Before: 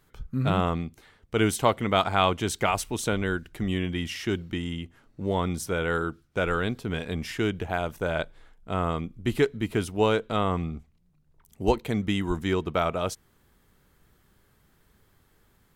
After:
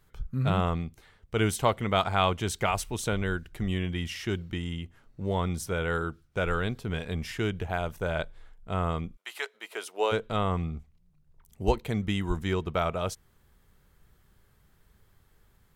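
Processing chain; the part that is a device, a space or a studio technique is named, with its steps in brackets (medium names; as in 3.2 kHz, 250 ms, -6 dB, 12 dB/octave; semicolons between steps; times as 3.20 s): 9.15–10.11 s: high-pass 850 Hz -> 360 Hz 24 dB/octave; low shelf boost with a cut just above (bass shelf 97 Hz +7 dB; peaking EQ 280 Hz -5 dB 0.57 oct); trim -2.5 dB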